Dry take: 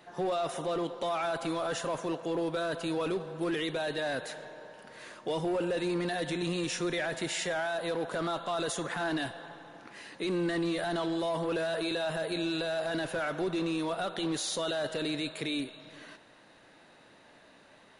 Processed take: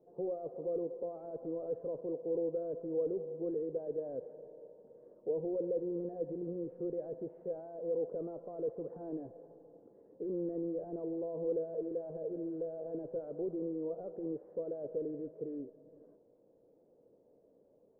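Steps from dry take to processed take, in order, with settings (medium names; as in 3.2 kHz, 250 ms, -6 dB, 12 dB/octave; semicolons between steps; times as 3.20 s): sorted samples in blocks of 8 samples; four-pole ladder low-pass 520 Hz, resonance 70%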